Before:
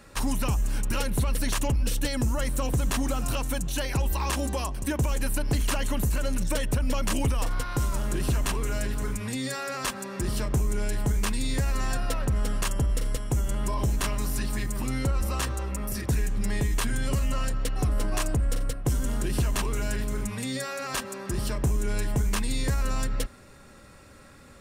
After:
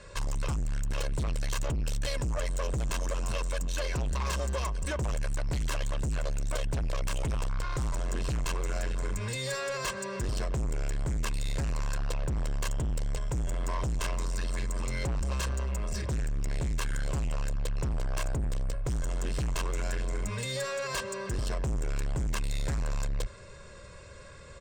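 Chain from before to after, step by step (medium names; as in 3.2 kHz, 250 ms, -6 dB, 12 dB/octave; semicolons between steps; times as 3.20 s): steep low-pass 8.8 kHz 96 dB/octave; comb 1.9 ms, depth 84%; saturation -27.5 dBFS, distortion -9 dB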